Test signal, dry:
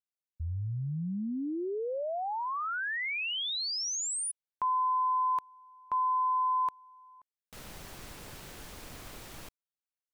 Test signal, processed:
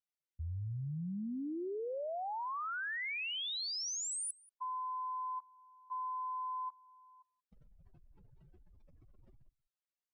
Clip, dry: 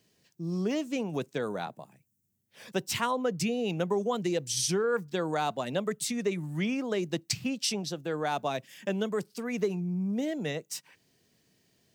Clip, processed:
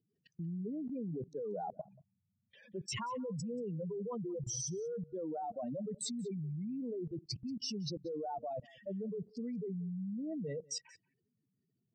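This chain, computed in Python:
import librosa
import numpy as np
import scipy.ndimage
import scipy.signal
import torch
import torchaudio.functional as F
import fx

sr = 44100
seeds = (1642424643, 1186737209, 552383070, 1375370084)

p1 = fx.spec_expand(x, sr, power=3.4)
p2 = scipy.signal.sosfilt(scipy.signal.butter(2, 7400.0, 'lowpass', fs=sr, output='sos'), p1)
p3 = fx.level_steps(p2, sr, step_db=22)
p4 = p3 + fx.echo_single(p3, sr, ms=183, db=-24.0, dry=0)
y = F.gain(torch.from_numpy(p4), 5.0).numpy()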